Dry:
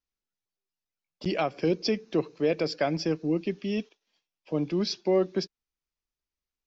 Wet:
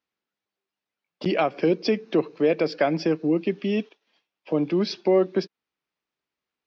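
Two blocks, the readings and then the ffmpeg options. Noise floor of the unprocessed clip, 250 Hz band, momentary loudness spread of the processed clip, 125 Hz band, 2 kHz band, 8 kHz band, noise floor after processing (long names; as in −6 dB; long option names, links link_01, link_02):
below −85 dBFS, +4.5 dB, 7 LU, +2.0 dB, +5.0 dB, can't be measured, below −85 dBFS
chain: -filter_complex "[0:a]highpass=180,lowpass=3300,asplit=2[link_01][link_02];[link_02]acompressor=threshold=-35dB:ratio=6,volume=2.5dB[link_03];[link_01][link_03]amix=inputs=2:normalize=0,volume=2.5dB"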